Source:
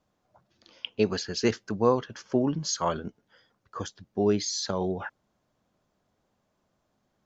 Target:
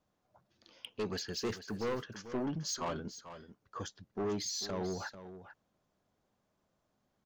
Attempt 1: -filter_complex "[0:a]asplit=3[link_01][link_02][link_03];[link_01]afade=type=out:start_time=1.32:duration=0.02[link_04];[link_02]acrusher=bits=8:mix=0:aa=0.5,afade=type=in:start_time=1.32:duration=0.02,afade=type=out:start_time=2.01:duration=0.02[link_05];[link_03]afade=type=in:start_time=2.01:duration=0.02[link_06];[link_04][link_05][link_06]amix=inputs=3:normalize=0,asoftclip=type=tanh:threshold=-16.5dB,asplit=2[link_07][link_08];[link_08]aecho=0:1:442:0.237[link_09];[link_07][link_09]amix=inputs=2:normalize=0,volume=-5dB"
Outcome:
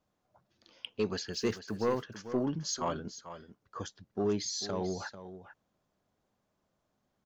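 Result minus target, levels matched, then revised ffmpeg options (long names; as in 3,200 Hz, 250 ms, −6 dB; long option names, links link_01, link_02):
soft clipping: distortion −8 dB
-filter_complex "[0:a]asplit=3[link_01][link_02][link_03];[link_01]afade=type=out:start_time=1.32:duration=0.02[link_04];[link_02]acrusher=bits=8:mix=0:aa=0.5,afade=type=in:start_time=1.32:duration=0.02,afade=type=out:start_time=2.01:duration=0.02[link_05];[link_03]afade=type=in:start_time=2.01:duration=0.02[link_06];[link_04][link_05][link_06]amix=inputs=3:normalize=0,asoftclip=type=tanh:threshold=-26dB,asplit=2[link_07][link_08];[link_08]aecho=0:1:442:0.237[link_09];[link_07][link_09]amix=inputs=2:normalize=0,volume=-5dB"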